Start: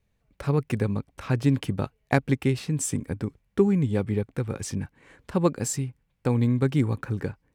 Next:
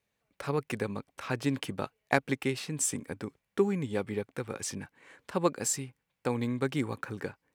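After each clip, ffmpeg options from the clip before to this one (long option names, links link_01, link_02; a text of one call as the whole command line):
ffmpeg -i in.wav -af "highpass=frequency=540:poles=1" out.wav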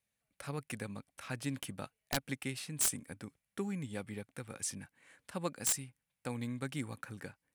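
ffmpeg -i in.wav -af "equalizer=frequency=400:width_type=o:width=0.67:gain=-9,equalizer=frequency=1000:width_type=o:width=0.67:gain=-5,equalizer=frequency=10000:width_type=o:width=0.67:gain=10,aeval=exprs='(mod(6.68*val(0)+1,2)-1)/6.68':channel_layout=same,volume=-6dB" out.wav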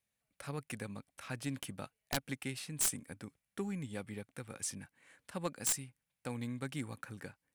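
ffmpeg -i in.wav -af "aeval=exprs='0.075*(cos(1*acos(clip(val(0)/0.075,-1,1)))-cos(1*PI/2))+0.00596*(cos(4*acos(clip(val(0)/0.075,-1,1)))-cos(4*PI/2))+0.00335*(cos(6*acos(clip(val(0)/0.075,-1,1)))-cos(6*PI/2))':channel_layout=same,volume=-1dB" out.wav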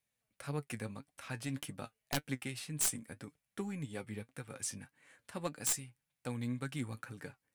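ffmpeg -i in.wav -af "flanger=delay=6.6:depth=2.5:regen=54:speed=1.8:shape=sinusoidal,volume=4dB" out.wav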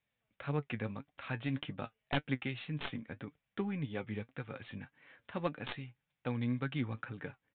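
ffmpeg -i in.wav -af "aresample=8000,aresample=44100,volume=3.5dB" out.wav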